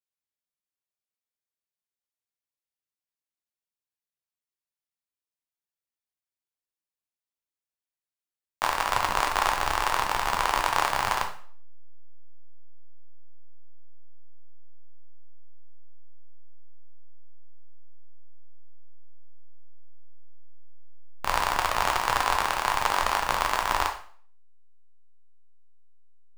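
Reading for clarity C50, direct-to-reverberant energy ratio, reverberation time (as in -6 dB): 9.5 dB, 2.0 dB, 0.50 s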